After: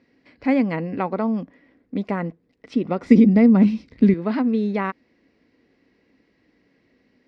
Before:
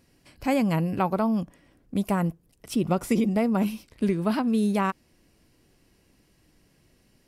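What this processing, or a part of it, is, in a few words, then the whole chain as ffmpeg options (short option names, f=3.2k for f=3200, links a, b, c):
guitar cabinet: -filter_complex "[0:a]highpass=81,equalizer=f=82:t=q:w=4:g=-9,equalizer=f=140:t=q:w=4:g=-9,equalizer=f=260:t=q:w=4:g=9,equalizer=f=470:t=q:w=4:g=7,equalizer=f=2k:t=q:w=4:g=9,equalizer=f=3k:t=q:w=4:g=-5,lowpass=f=4.4k:w=0.5412,lowpass=f=4.4k:w=1.3066,asettb=1/sr,asplit=3[a][b][c];[a]atrim=end=3.064[d];[b]atrim=start=3.06:end=4.14,asetpts=PTS-STARTPTS,afade=t=in:d=0.004:c=qsin,afade=t=out:st=1.076:d=0.004:c=qsin,bass=f=250:g=15,treble=f=4k:g=8[e];[c]atrim=start=4.136[f];[d][e]acrossfade=d=0.004:c1=hsin:c2=qsin[g];[g][f]acrossfade=d=0.004:c1=qsin:c2=hsin,volume=-1dB"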